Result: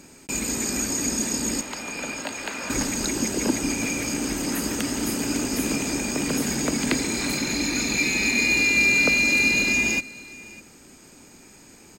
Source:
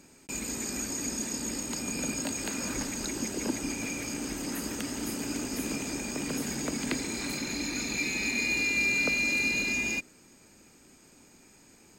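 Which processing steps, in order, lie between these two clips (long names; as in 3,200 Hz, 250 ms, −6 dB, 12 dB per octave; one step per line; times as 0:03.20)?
0:01.61–0:02.70: three-way crossover with the lows and the highs turned down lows −13 dB, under 510 Hz, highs −12 dB, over 3,900 Hz
single-tap delay 601 ms −21 dB
level +8 dB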